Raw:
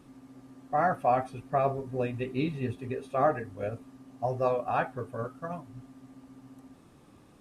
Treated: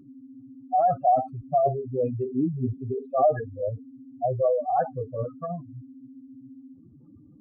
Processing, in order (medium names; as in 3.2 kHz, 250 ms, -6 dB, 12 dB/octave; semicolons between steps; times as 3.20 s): spectral contrast enhancement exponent 3.5; trim +5.5 dB